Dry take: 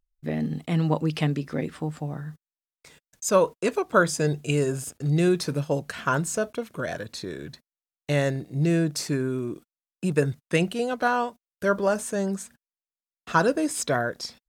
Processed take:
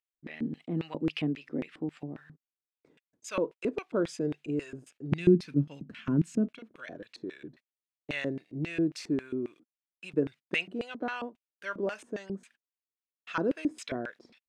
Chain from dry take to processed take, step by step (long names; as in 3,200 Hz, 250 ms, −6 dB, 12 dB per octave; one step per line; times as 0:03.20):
0:05.12–0:06.59: low shelf with overshoot 350 Hz +13.5 dB, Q 1.5
speech leveller within 3 dB 2 s
auto-filter band-pass square 3.7 Hz 310–2,500 Hz
level −2.5 dB